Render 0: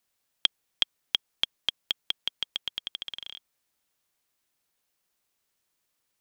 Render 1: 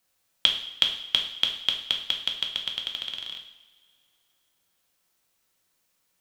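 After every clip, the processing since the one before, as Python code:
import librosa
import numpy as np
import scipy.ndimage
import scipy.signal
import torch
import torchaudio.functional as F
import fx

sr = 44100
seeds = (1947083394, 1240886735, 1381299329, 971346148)

y = fx.rev_double_slope(x, sr, seeds[0], early_s=0.67, late_s=2.5, knee_db=-19, drr_db=1.5)
y = F.gain(torch.from_numpy(y), 3.0).numpy()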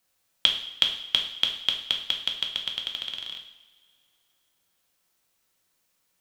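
y = x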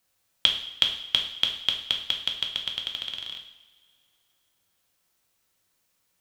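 y = fx.peak_eq(x, sr, hz=80.0, db=6.5, octaves=0.92)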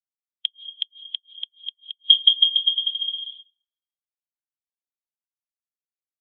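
y = x + 0.9 * np.pad(x, (int(5.9 * sr / 1000.0), 0))[:len(x)]
y = fx.gate_flip(y, sr, shuts_db=-8.0, range_db=-29)
y = fx.spectral_expand(y, sr, expansion=2.5)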